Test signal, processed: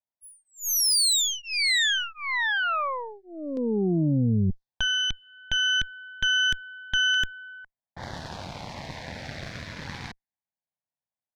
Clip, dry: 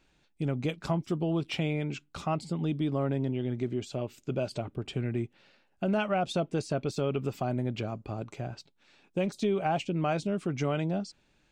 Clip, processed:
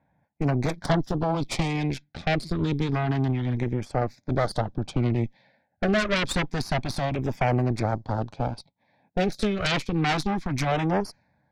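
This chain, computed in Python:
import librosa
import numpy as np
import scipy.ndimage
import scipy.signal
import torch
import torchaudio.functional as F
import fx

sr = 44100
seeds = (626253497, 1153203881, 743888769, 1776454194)

y = scipy.signal.sosfilt(scipy.signal.butter(4, 78.0, 'highpass', fs=sr, output='sos'), x)
y = fx.fixed_phaser(y, sr, hz=1900.0, stages=8)
y = fx.env_lowpass(y, sr, base_hz=1100.0, full_db=-32.5)
y = fx.cheby_harmonics(y, sr, harmonics=(5, 8), levels_db=(-43, -10), full_scale_db=-19.0)
y = fx.filter_lfo_notch(y, sr, shape='saw_down', hz=0.28, low_hz=380.0, high_hz=4800.0, q=1.8)
y = F.gain(torch.from_numpy(y), 7.0).numpy()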